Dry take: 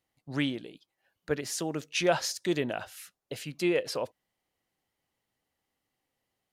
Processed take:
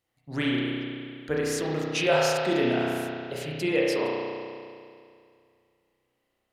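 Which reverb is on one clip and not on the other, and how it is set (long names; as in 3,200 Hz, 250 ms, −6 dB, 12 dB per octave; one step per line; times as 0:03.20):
spring reverb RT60 2.3 s, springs 32 ms, chirp 40 ms, DRR −5 dB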